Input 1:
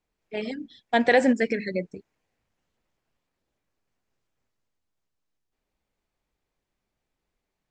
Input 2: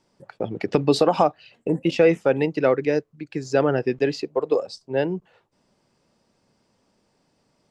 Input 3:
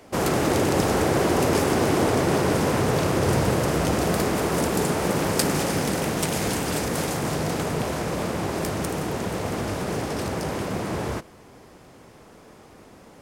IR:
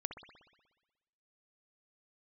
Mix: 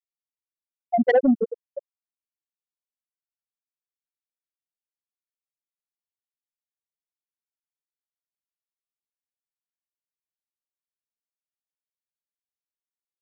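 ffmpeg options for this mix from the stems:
-filter_complex "[0:a]volume=1.5dB,asplit=2[link_01][link_02];[link_02]volume=-4dB[link_03];[1:a]volume=-11dB[link_04];[2:a]adelay=200,volume=-18.5dB[link_05];[3:a]atrim=start_sample=2205[link_06];[link_03][link_06]afir=irnorm=-1:irlink=0[link_07];[link_01][link_04][link_05][link_07]amix=inputs=4:normalize=0,afftfilt=real='re*gte(hypot(re,im),1.26)':imag='im*gte(hypot(re,im),1.26)':win_size=1024:overlap=0.75,asoftclip=type=tanh:threshold=-10dB"

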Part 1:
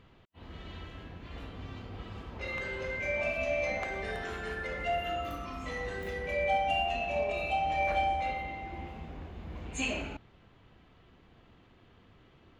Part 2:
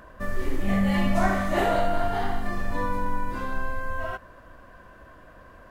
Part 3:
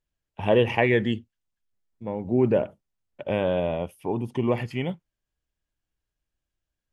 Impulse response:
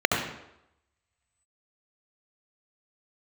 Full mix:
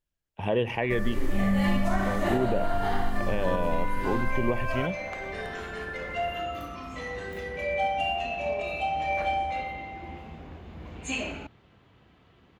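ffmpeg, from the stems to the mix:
-filter_complex "[0:a]highpass=61,adelay=1300,volume=1.5dB[link_01];[1:a]acrossover=split=240[link_02][link_03];[link_03]acompressor=threshold=-24dB:ratio=6[link_04];[link_02][link_04]amix=inputs=2:normalize=0,adelay=700,volume=0.5dB[link_05];[2:a]volume=-2dB,asplit=2[link_06][link_07];[link_07]apad=whole_len=612862[link_08];[link_01][link_08]sidechaincompress=threshold=-28dB:ratio=8:attack=16:release=983[link_09];[link_09][link_05][link_06]amix=inputs=3:normalize=0,alimiter=limit=-15dB:level=0:latency=1:release=208"

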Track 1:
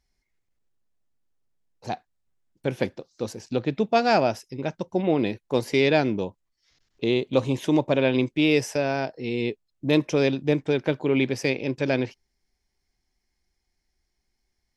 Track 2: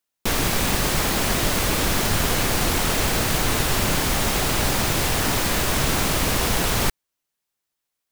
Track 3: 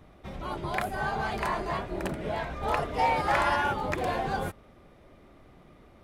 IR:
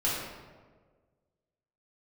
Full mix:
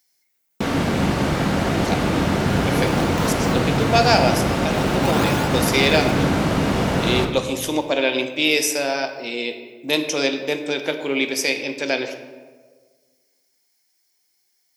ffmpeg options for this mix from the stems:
-filter_complex "[0:a]aemphasis=mode=production:type=riaa,volume=1dB,asplit=2[link_01][link_02];[link_02]volume=-13dB[link_03];[1:a]aemphasis=mode=reproduction:type=riaa,adelay=350,volume=-2.5dB,asplit=2[link_04][link_05];[link_05]volume=-10dB[link_06];[2:a]highpass=680,acrusher=samples=30:mix=1:aa=0.000001:lfo=1:lforange=48:lforate=0.46,adelay=1750,volume=-0.5dB[link_07];[3:a]atrim=start_sample=2205[link_08];[link_03][link_06]amix=inputs=2:normalize=0[link_09];[link_09][link_08]afir=irnorm=-1:irlink=0[link_10];[link_01][link_04][link_07][link_10]amix=inputs=4:normalize=0,highpass=190"

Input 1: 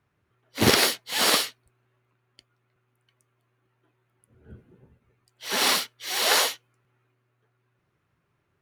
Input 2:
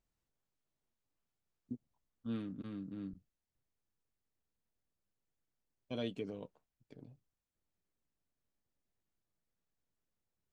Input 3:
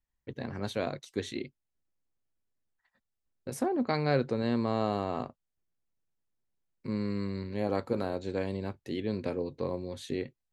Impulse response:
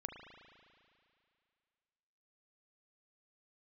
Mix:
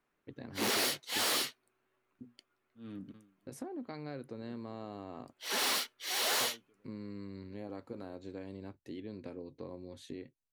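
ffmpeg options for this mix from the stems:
-filter_complex "[0:a]volume=24dB,asoftclip=hard,volume=-24dB,highpass=frequency=200:width=0.5412,highpass=frequency=200:width=1.3066,volume=-5dB[link_01];[1:a]bandreject=frequency=60:width_type=h:width=6,bandreject=frequency=120:width_type=h:width=6,bandreject=frequency=180:width_type=h:width=6,bandreject=frequency=240:width_type=h:width=6,aeval=exprs='val(0)*pow(10,-31*(0.5-0.5*cos(2*PI*1.2*n/s))/20)':channel_layout=same,adelay=500,volume=0dB[link_02];[2:a]equalizer=frequency=290:width=4:gain=7,acompressor=threshold=-32dB:ratio=3,volume=-9dB,asplit=2[link_03][link_04];[link_04]apad=whole_len=486375[link_05];[link_02][link_05]sidechaincompress=threshold=-59dB:ratio=8:attack=16:release=806[link_06];[link_01][link_06][link_03]amix=inputs=3:normalize=0"

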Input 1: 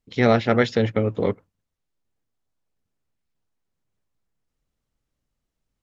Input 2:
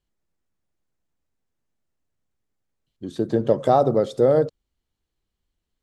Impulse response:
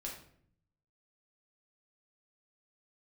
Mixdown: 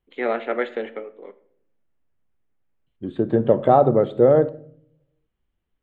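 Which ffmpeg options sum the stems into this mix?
-filter_complex "[0:a]highpass=frequency=310:width=0.5412,highpass=frequency=310:width=1.3066,volume=-6.5dB,afade=type=out:start_time=0.88:duration=0.23:silence=0.223872,asplit=2[link_01][link_02];[link_02]volume=-6dB[link_03];[1:a]lowpass=frequency=5400:width=0.5412,lowpass=frequency=5400:width=1.3066,volume=1dB,asplit=2[link_04][link_05];[link_05]volume=-9.5dB[link_06];[2:a]atrim=start_sample=2205[link_07];[link_03][link_06]amix=inputs=2:normalize=0[link_08];[link_08][link_07]afir=irnorm=-1:irlink=0[link_09];[link_01][link_04][link_09]amix=inputs=3:normalize=0,asuperstop=centerf=5500:order=4:qfactor=0.82"

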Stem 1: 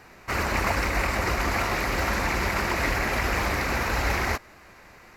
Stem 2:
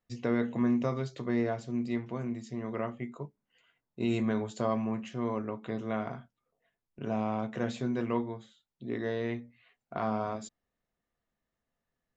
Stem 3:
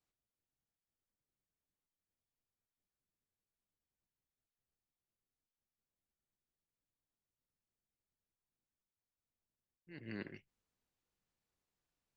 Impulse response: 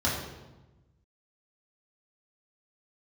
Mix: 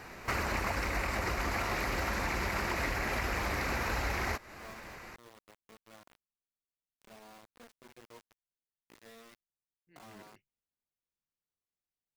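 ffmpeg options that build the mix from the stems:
-filter_complex "[0:a]volume=2dB[link_01];[1:a]lowshelf=frequency=270:gain=-11,flanger=delay=3.4:depth=3.4:regen=-14:speed=0.67:shape=triangular,acrusher=bits=5:mix=0:aa=0.000001,volume=-17.5dB[link_02];[2:a]volume=-11dB[link_03];[link_01][link_02][link_03]amix=inputs=3:normalize=0,acompressor=threshold=-31dB:ratio=5"

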